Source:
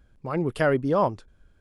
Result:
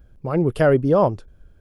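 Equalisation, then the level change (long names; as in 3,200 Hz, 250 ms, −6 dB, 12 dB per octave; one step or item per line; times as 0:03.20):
graphic EQ with 10 bands 250 Hz −4 dB, 1,000 Hz −6 dB, 2,000 Hz −7 dB, 4,000 Hz −6 dB, 8,000 Hz −8 dB
+9.0 dB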